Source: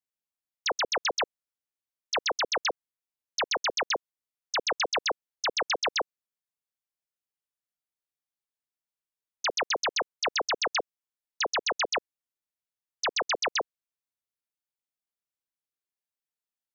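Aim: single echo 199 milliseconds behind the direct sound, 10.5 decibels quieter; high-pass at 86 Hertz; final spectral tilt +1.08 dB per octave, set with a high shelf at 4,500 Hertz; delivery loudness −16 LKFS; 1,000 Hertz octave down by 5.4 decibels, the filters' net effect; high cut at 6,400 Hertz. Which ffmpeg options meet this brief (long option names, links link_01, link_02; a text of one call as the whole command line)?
ffmpeg -i in.wav -af "highpass=86,lowpass=6400,equalizer=frequency=1000:width_type=o:gain=-7.5,highshelf=frequency=4500:gain=4.5,aecho=1:1:199:0.299,volume=13.5dB" out.wav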